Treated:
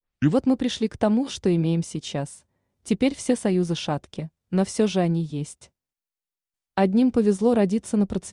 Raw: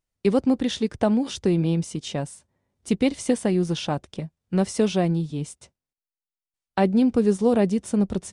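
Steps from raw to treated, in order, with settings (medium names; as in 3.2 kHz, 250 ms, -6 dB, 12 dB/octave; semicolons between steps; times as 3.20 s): tape start-up on the opening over 0.36 s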